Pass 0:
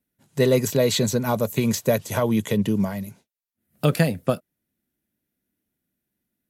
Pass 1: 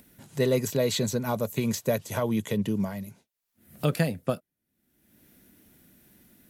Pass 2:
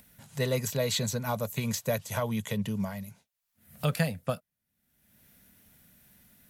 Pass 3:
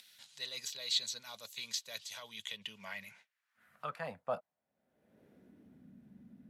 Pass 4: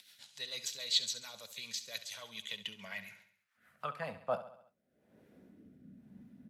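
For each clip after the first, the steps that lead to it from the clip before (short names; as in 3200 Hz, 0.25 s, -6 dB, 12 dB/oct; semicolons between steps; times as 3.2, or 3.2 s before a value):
upward compressor, threshold -30 dBFS; gain -5.5 dB
bell 330 Hz -14.5 dB 0.79 oct
reverse; compressor 5:1, threshold -38 dBFS, peak gain reduction 15 dB; reverse; band-pass sweep 4000 Hz -> 240 Hz, 2.28–5.96; gain +12 dB
rotary speaker horn 7 Hz, later 1 Hz, at 3.58; on a send: feedback echo 68 ms, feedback 53%, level -13 dB; on the sum: gain +3 dB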